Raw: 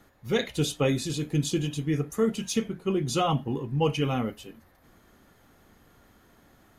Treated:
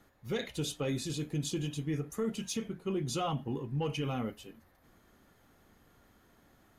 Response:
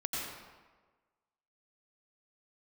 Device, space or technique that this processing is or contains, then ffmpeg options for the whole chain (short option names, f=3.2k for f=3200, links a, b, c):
soft clipper into limiter: -af "asoftclip=type=tanh:threshold=-13.5dB,alimiter=limit=-20dB:level=0:latency=1:release=54,volume=-5.5dB"